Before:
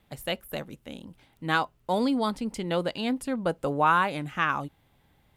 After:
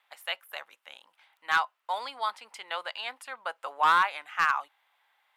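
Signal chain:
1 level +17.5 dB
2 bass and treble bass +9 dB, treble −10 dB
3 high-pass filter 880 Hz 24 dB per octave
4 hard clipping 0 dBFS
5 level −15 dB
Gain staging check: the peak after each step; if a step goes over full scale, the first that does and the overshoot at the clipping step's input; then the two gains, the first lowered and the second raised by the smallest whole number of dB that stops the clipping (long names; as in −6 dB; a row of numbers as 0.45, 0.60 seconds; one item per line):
+7.5, +8.0, +6.5, 0.0, −15.0 dBFS
step 1, 6.5 dB
step 1 +10.5 dB, step 5 −8 dB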